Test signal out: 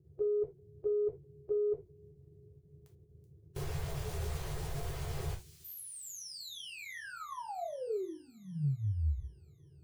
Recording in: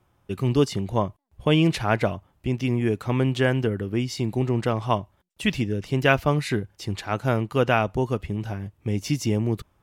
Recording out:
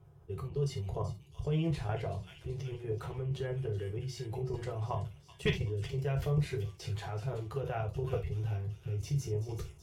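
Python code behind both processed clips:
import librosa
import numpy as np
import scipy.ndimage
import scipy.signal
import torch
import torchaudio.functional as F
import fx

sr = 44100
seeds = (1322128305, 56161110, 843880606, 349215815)

y = fx.spec_quant(x, sr, step_db=15)
y = fx.dmg_noise_band(y, sr, seeds[0], low_hz=67.0, high_hz=310.0, level_db=-64.0)
y = fx.level_steps(y, sr, step_db=22)
y = fx.curve_eq(y, sr, hz=(140.0, 250.0, 380.0, 2000.0), db=(0, -24, -4, -14))
y = fx.echo_wet_highpass(y, sr, ms=379, feedback_pct=64, hz=4400.0, wet_db=-9.5)
y = fx.over_compress(y, sr, threshold_db=-36.0, ratio=-1.0)
y = fx.hum_notches(y, sr, base_hz=60, count=6)
y = fx.rev_gated(y, sr, seeds[1], gate_ms=100, shape='falling', drr_db=0.5)
y = 10.0 ** (-20.5 / 20.0) * np.tanh(y / 10.0 ** (-20.5 / 20.0))
y = y * librosa.db_to_amplitude(2.5)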